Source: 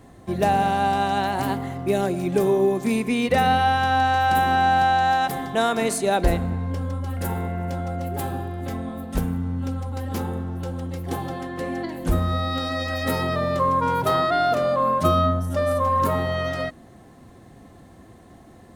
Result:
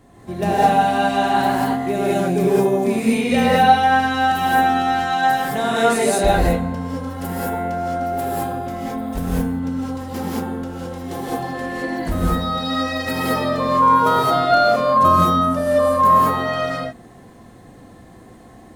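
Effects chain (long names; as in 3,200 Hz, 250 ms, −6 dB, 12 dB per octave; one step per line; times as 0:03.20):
reverb whose tail is shaped and stops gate 240 ms rising, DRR −7 dB
level −3 dB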